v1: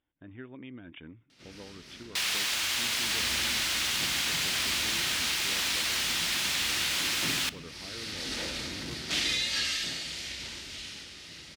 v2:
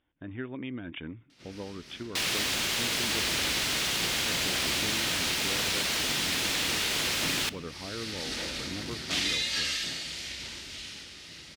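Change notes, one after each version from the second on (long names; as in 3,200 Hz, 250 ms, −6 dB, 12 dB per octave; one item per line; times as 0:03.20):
speech +7.5 dB
second sound: remove high-pass filter 880 Hz 12 dB per octave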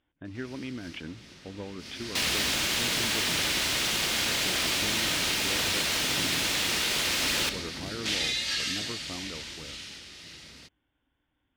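first sound: entry −1.05 s
second sound: send +7.0 dB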